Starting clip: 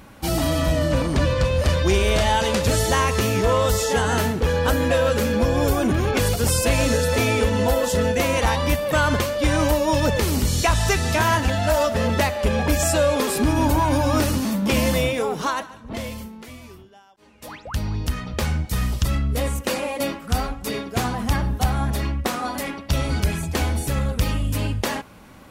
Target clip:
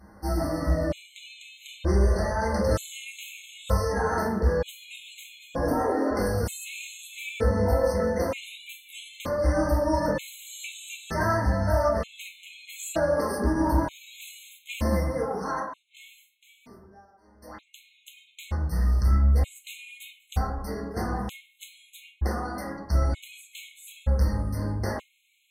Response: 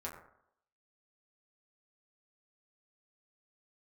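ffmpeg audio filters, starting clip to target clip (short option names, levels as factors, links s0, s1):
-filter_complex "[0:a]asplit=3[s0][s1][s2];[s0]afade=t=out:st=5.67:d=0.02[s3];[s1]afreqshift=190,afade=t=in:st=5.67:d=0.02,afade=t=out:st=6.1:d=0.02[s4];[s2]afade=t=in:st=6.1:d=0.02[s5];[s3][s4][s5]amix=inputs=3:normalize=0[s6];[1:a]atrim=start_sample=2205,asetrate=36162,aresample=44100[s7];[s6][s7]afir=irnorm=-1:irlink=0,afftfilt=real='re*gt(sin(2*PI*0.54*pts/sr)*(1-2*mod(floor(b*sr/1024/2100),2)),0)':imag='im*gt(sin(2*PI*0.54*pts/sr)*(1-2*mod(floor(b*sr/1024/2100),2)),0)':win_size=1024:overlap=0.75,volume=0.473"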